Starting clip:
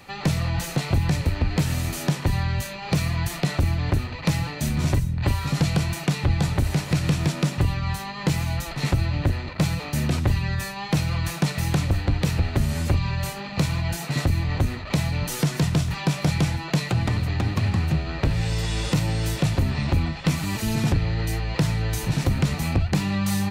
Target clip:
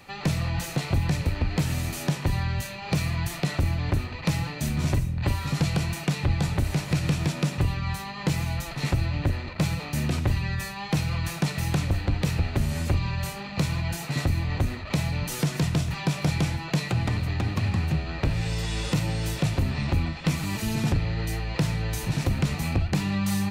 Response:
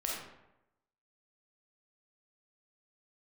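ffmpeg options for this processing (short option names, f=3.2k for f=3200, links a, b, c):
-filter_complex "[0:a]asplit=2[a][b];[b]equalizer=f=2.5k:w=3.7:g=8[c];[1:a]atrim=start_sample=2205[d];[c][d]afir=irnorm=-1:irlink=0,volume=-16dB[e];[a][e]amix=inputs=2:normalize=0,volume=-4dB"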